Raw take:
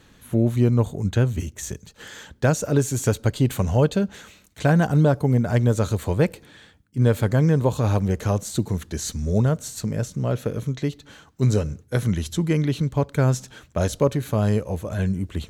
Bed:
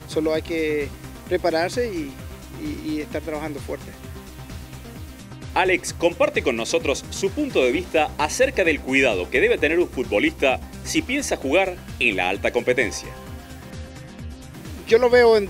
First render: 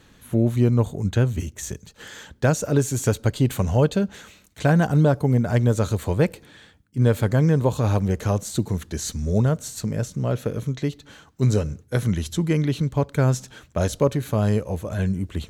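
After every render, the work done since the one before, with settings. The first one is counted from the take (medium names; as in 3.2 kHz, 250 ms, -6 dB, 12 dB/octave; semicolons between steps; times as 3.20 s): no audible change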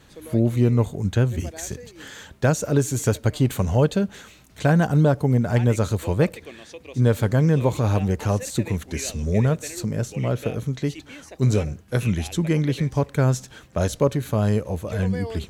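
add bed -19.5 dB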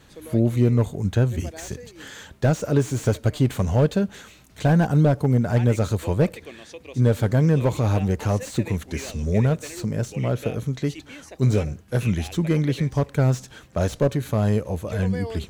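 slew-rate limiter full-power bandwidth 100 Hz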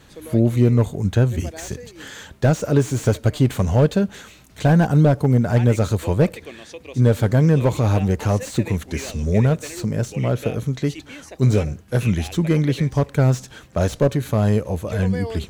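trim +3 dB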